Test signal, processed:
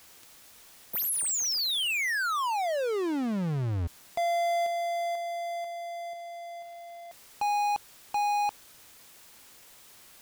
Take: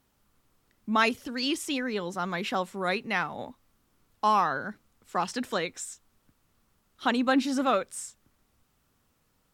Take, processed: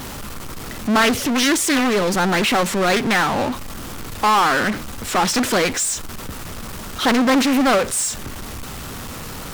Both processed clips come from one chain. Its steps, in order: power-law curve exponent 0.35; Doppler distortion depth 0.51 ms

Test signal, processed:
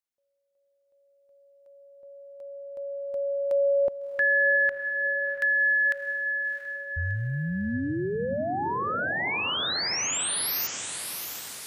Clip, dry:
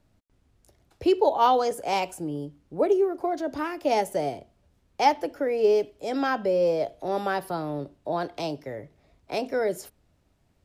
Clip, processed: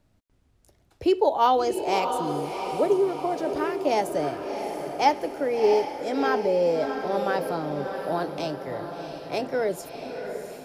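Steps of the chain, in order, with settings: diffused feedback echo 0.682 s, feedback 54%, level -7 dB

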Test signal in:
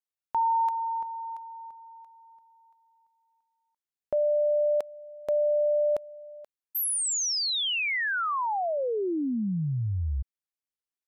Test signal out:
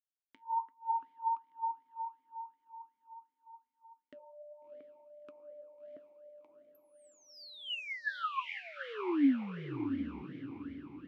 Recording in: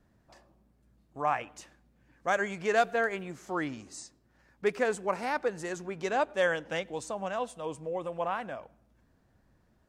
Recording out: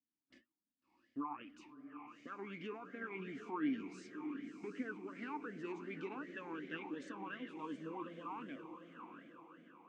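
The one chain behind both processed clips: treble ducked by the level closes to 1200 Hz, closed at -23 dBFS; gate -56 dBFS, range -30 dB; dynamic EQ 1200 Hz, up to +6 dB, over -46 dBFS, Q 2.4; in parallel at +2 dB: compressor, threshold -39 dBFS; on the sum: limiter -23.5 dBFS; flange 1.3 Hz, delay 3.5 ms, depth 5.9 ms, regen +74%; on a send: diffused feedback echo 0.674 s, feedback 47%, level -7.5 dB; on the sum: vowel sweep i-u 2.7 Hz; gain +7 dB

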